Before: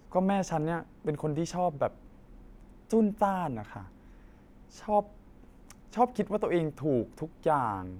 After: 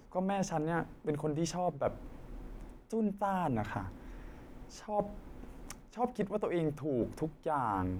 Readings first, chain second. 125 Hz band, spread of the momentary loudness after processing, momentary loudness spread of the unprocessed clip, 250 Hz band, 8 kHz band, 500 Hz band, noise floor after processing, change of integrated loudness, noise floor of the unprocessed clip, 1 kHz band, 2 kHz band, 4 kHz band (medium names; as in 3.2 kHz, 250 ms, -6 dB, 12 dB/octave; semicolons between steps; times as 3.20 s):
-3.0 dB, 18 LU, 12 LU, -4.5 dB, 0.0 dB, -5.0 dB, -55 dBFS, -5.0 dB, -56 dBFS, -5.5 dB, -2.0 dB, -1.5 dB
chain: hum notches 50/100/150/200 Hz; reverse; compression 16:1, threshold -35 dBFS, peak gain reduction 17.5 dB; reverse; trim +6 dB